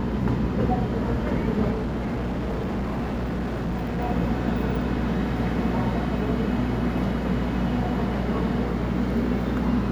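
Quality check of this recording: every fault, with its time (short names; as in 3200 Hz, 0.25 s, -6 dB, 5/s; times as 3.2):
hum 60 Hz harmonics 8 -29 dBFS
1.71–4.01 clipped -24 dBFS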